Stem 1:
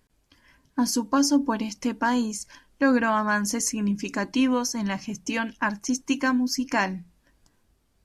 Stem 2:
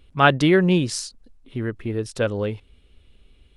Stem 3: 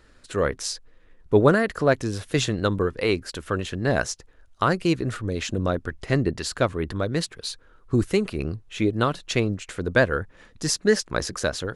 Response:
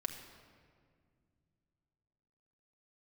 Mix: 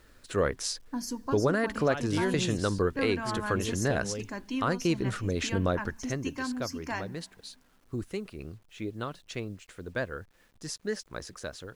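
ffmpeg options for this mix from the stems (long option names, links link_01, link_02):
-filter_complex "[0:a]adelay=150,volume=-12.5dB,asplit=2[link_01][link_02];[link_02]volume=-14dB[link_03];[1:a]alimiter=limit=-11dB:level=0:latency=1:release=438,adelay=1700,volume=-10.5dB[link_04];[2:a]volume=-2.5dB,afade=type=out:start_time=5.81:duration=0.37:silence=0.281838[link_05];[3:a]atrim=start_sample=2205[link_06];[link_03][link_06]afir=irnorm=-1:irlink=0[link_07];[link_01][link_04][link_05][link_07]amix=inputs=4:normalize=0,acrusher=bits=10:mix=0:aa=0.000001,alimiter=limit=-16dB:level=0:latency=1:release=225"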